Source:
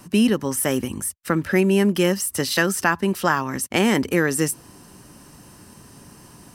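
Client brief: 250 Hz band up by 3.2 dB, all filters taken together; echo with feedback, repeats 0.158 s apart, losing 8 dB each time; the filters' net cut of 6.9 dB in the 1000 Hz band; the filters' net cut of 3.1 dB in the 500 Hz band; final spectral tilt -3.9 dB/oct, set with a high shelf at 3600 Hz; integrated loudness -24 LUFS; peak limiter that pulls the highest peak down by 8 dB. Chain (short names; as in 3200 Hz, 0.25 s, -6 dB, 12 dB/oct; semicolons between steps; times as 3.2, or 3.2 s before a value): bell 250 Hz +6 dB; bell 500 Hz -6 dB; bell 1000 Hz -8.5 dB; high shelf 3600 Hz +7.5 dB; limiter -11 dBFS; feedback echo 0.158 s, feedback 40%, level -8 dB; gain -4 dB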